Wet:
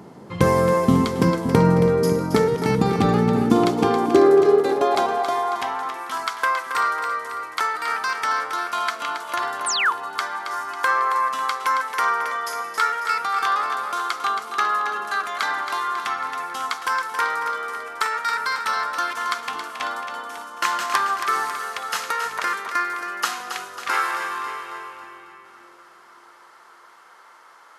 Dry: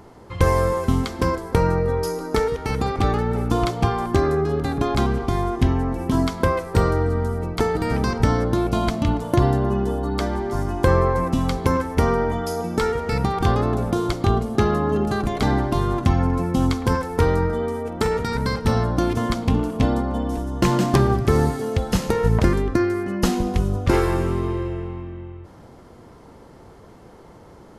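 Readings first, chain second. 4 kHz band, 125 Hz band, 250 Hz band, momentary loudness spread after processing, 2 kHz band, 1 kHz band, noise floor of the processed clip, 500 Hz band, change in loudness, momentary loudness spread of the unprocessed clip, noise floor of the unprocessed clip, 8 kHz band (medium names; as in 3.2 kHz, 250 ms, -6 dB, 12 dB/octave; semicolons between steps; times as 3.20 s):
+3.5 dB, -8.0 dB, -3.0 dB, 10 LU, +7.0 dB, +4.0 dB, -49 dBFS, -1.0 dB, -0.5 dB, 5 LU, -46 dBFS, +3.5 dB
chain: two-band feedback delay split 390 Hz, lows 569 ms, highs 273 ms, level -8 dB; painted sound fall, 9.66–9.93 s, 840–10000 Hz -25 dBFS; high-pass sweep 170 Hz -> 1.3 kHz, 3.23–6.11 s; trim +1 dB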